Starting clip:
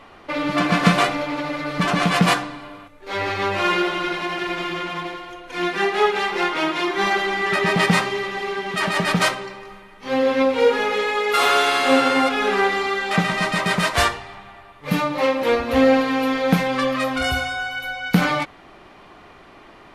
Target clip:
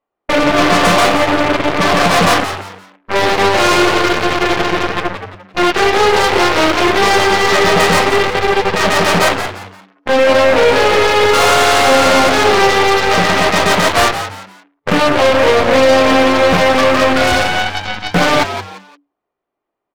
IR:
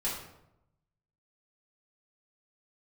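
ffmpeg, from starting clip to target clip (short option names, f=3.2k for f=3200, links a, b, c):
-filter_complex "[0:a]agate=range=-19dB:threshold=-35dB:ratio=16:detection=peak,afwtdn=0.0355,equalizer=f=520:w=0.54:g=11.5,apsyclip=13dB,aeval=exprs='1.06*(cos(1*acos(clip(val(0)/1.06,-1,1)))-cos(1*PI/2))+0.422*(cos(3*acos(clip(val(0)/1.06,-1,1)))-cos(3*PI/2))+0.188*(cos(4*acos(clip(val(0)/1.06,-1,1)))-cos(4*PI/2))+0.0473*(cos(6*acos(clip(val(0)/1.06,-1,1)))-cos(6*PI/2))':c=same,asoftclip=type=hard:threshold=-0.5dB,asplit=2[a][b];[b]asplit=3[c][d][e];[c]adelay=173,afreqshift=95,volume=-10dB[f];[d]adelay=346,afreqshift=190,volume=-20.5dB[g];[e]adelay=519,afreqshift=285,volume=-30.9dB[h];[f][g][h]amix=inputs=3:normalize=0[i];[a][i]amix=inputs=2:normalize=0,volume=-5dB"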